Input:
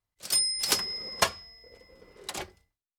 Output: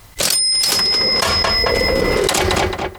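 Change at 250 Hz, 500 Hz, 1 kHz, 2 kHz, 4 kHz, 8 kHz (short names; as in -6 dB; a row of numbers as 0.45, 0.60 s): +23.0, +22.0, +15.5, +17.0, +15.5, +11.0 dB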